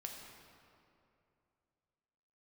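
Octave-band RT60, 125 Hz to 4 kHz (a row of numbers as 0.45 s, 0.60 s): 3.0 s, 2.8 s, 2.8 s, 2.5 s, 2.1 s, 1.6 s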